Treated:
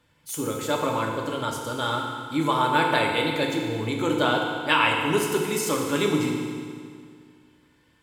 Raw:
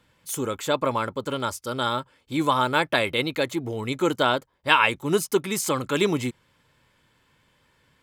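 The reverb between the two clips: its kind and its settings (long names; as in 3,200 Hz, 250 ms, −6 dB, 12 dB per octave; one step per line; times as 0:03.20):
feedback delay network reverb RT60 2.1 s, low-frequency decay 1.1×, high-frequency decay 0.9×, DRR −0.5 dB
level −3.5 dB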